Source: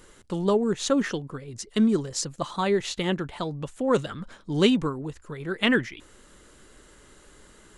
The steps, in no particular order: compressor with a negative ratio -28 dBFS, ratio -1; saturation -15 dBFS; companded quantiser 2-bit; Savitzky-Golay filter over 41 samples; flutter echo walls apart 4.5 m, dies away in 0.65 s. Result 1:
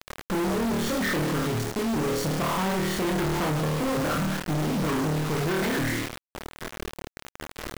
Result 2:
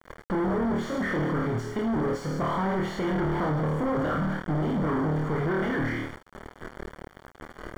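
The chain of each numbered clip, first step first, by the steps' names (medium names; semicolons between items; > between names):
Savitzky-Golay filter > compressor with a negative ratio > flutter echo > saturation > companded quantiser; saturation > compressor with a negative ratio > flutter echo > companded quantiser > Savitzky-Golay filter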